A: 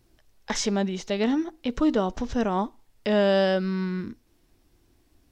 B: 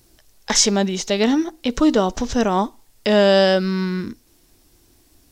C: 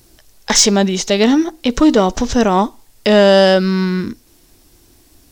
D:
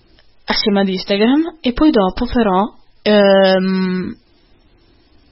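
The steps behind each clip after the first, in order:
tone controls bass -2 dB, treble +9 dB; trim +7 dB
saturation -7 dBFS, distortion -22 dB; trim +6 dB
MP3 16 kbps 22.05 kHz

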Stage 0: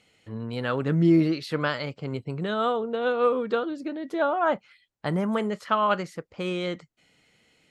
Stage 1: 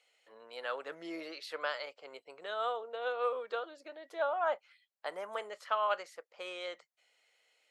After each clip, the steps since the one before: Chebyshev high-pass 550 Hz, order 3; trim -7.5 dB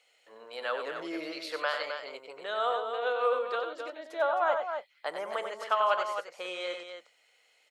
loudspeakers at several distances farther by 32 m -7 dB, 90 m -8 dB; trim +4.5 dB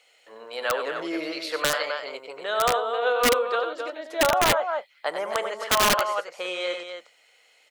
integer overflow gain 20 dB; trim +7 dB

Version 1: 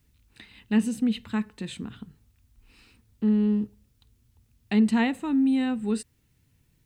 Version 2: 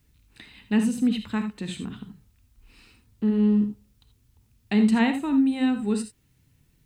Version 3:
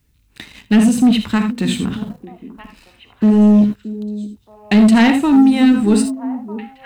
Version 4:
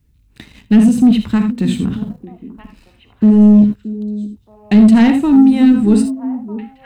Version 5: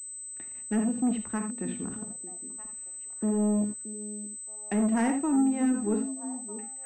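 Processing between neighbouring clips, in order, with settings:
gated-style reverb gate 100 ms rising, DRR 7.5 dB; trim +1.5 dB
waveshaping leveller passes 2; repeats whose band climbs or falls 624 ms, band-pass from 310 Hz, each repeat 1.4 oct, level -11 dB; trim +6 dB
bass shelf 420 Hz +10.5 dB; trim -5.5 dB
three-band isolator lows -15 dB, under 320 Hz, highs -18 dB, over 2.2 kHz; class-D stage that switches slowly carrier 8.1 kHz; trim -9 dB

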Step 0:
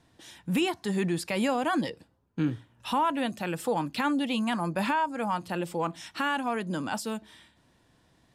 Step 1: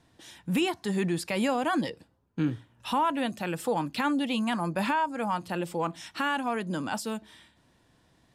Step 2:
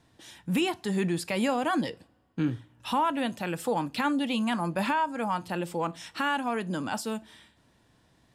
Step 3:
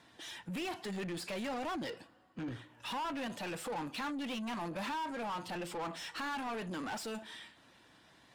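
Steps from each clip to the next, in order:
no audible change
two-slope reverb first 0.27 s, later 2.3 s, from -28 dB, DRR 16.5 dB
coarse spectral quantiser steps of 15 dB; saturation -29 dBFS, distortion -10 dB; overdrive pedal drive 19 dB, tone 4.4 kHz, clips at -29 dBFS; trim -5.5 dB

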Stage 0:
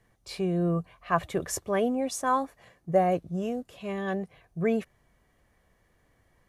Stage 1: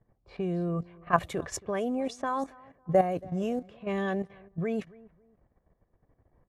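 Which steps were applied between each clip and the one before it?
feedback delay 275 ms, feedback 35%, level -23.5 dB; level held to a coarse grid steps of 11 dB; level-controlled noise filter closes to 810 Hz, open at -28.5 dBFS; trim +3.5 dB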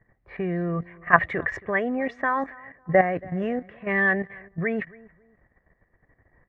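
resonant low-pass 1.9 kHz, resonance Q 12; trim +3 dB

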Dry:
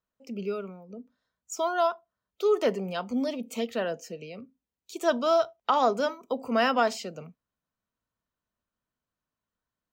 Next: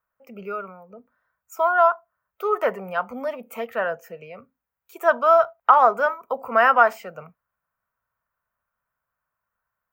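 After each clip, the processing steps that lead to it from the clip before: FFT filter 130 Hz 0 dB, 290 Hz -11 dB, 540 Hz +3 dB, 1.4 kHz +12 dB, 2.4 kHz +2 dB, 3.9 kHz -15 dB, 6.8 kHz -11 dB, 15 kHz +8 dB; trim +1 dB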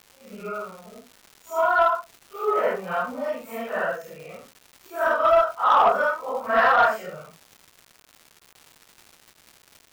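phase randomisation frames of 200 ms; crackle 370 per s -37 dBFS; saturation -9.5 dBFS, distortion -18 dB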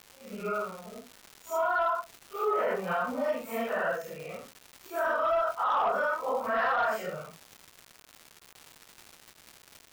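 peak limiter -21 dBFS, peak gain reduction 11 dB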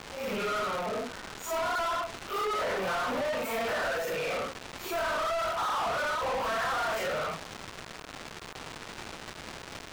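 compression, threshold -33 dBFS, peak gain reduction 9 dB; overdrive pedal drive 32 dB, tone 4.2 kHz, clips at -25 dBFS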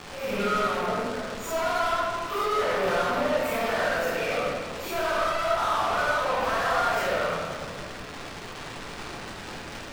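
reverberation RT60 1.9 s, pre-delay 6 ms, DRR -3 dB

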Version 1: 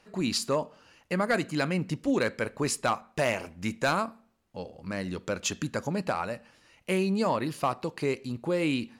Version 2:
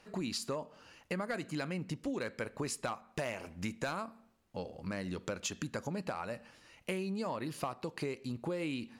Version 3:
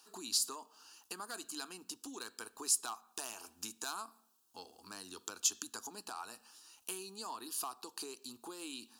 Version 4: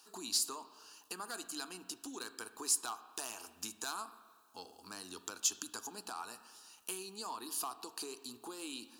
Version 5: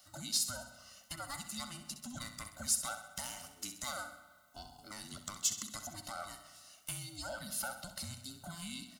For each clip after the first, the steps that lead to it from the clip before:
compression 5:1, threshold -35 dBFS, peak gain reduction 12.5 dB
tilt EQ +4.5 dB/octave; static phaser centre 560 Hz, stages 6; trim -2.5 dB
in parallel at -5.5 dB: saturation -31.5 dBFS, distortion -8 dB; on the sum: spring tank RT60 1.7 s, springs 33/38/59 ms, chirp 45 ms, DRR 13 dB; trim -2.5 dB
every band turned upside down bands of 500 Hz; on a send: feedback delay 65 ms, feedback 52%, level -11 dB

